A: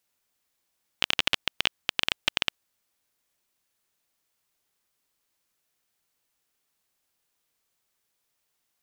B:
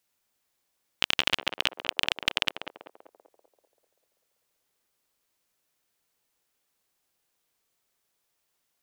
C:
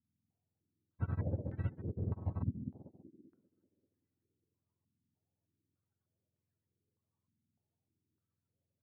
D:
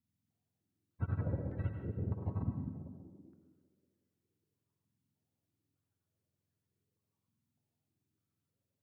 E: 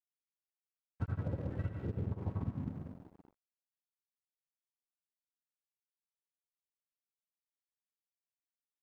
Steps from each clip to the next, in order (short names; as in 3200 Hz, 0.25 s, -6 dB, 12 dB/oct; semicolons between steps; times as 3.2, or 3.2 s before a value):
narrowing echo 0.194 s, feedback 60%, band-pass 520 Hz, level -3 dB
spectrum mirrored in octaves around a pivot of 410 Hz; stepped low-pass 3.3 Hz 240–1900 Hz; gain -5.5 dB
plate-style reverb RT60 1.3 s, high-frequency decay 0.85×, pre-delay 75 ms, DRR 5 dB
compressor 6:1, threshold -36 dBFS, peak gain reduction 7 dB; crossover distortion -55.5 dBFS; gain +4.5 dB